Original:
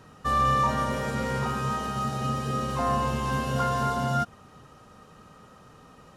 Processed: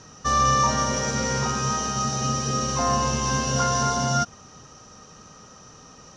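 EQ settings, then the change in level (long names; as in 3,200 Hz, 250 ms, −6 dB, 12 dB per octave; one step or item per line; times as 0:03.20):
low-pass with resonance 5,900 Hz, resonance Q 14
+2.5 dB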